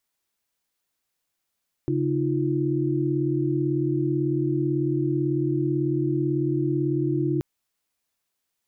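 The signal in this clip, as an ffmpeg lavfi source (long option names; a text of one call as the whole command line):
ffmpeg -f lavfi -i "aevalsrc='0.0531*(sin(2*PI*138.59*t)+sin(2*PI*311.13*t)+sin(2*PI*349.23*t))':duration=5.53:sample_rate=44100" out.wav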